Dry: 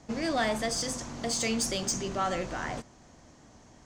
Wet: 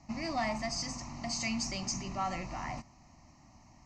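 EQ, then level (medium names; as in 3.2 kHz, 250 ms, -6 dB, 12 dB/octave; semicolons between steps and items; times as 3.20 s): Bessel low-pass 6.3 kHz, order 4; static phaser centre 2.3 kHz, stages 8; -1.0 dB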